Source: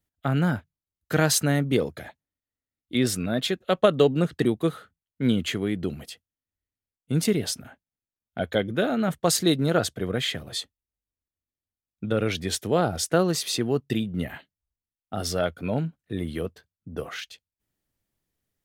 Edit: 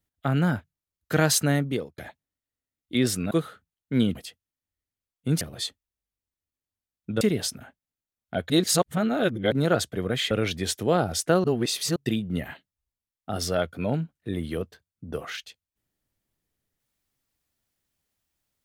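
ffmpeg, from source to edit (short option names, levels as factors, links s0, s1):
-filter_complex "[0:a]asplit=11[s0][s1][s2][s3][s4][s5][s6][s7][s8][s9][s10];[s0]atrim=end=1.98,asetpts=PTS-STARTPTS,afade=t=out:st=1.55:d=0.43[s11];[s1]atrim=start=1.98:end=3.312,asetpts=PTS-STARTPTS,afade=t=in:d=0.004:c=hsin[s12];[s2]atrim=start=4.598:end=5.442[s13];[s3]atrim=start=5.988:end=7.252[s14];[s4]atrim=start=10.348:end=12.152[s15];[s5]atrim=start=7.248:end=8.542[s16];[s6]atrim=start=8.538:end=9.562,asetpts=PTS-STARTPTS,areverse[s17];[s7]atrim=start=9.558:end=10.352[s18];[s8]atrim=start=12.148:end=13.282[s19];[s9]atrim=start=13.278:end=13.802,asetpts=PTS-STARTPTS,areverse[s20];[s10]atrim=start=13.798[s21];[s11][s12]concat=n=2:v=0:a=1[s22];[s22][s13]acrossfade=d=0.004:c1=hsin:c2=hsin[s23];[s23][s14]acrossfade=d=0.004:c1=hsin:c2=hsin[s24];[s24][s15]acrossfade=d=0.004:c1=hsin:c2=hsin[s25];[s25][s16]acrossfade=d=0.004:c1=hsin:c2=hsin[s26];[s26][s17]acrossfade=d=0.004:c1=hsin:c2=hsin[s27];[s27][s18]acrossfade=d=0.004:c1=hsin:c2=hsin[s28];[s28][s19]acrossfade=d=0.004:c1=hsin:c2=hsin[s29];[s29][s20]acrossfade=d=0.004:c1=hsin:c2=hsin[s30];[s30][s21]acrossfade=d=0.004:c1=hsin:c2=hsin"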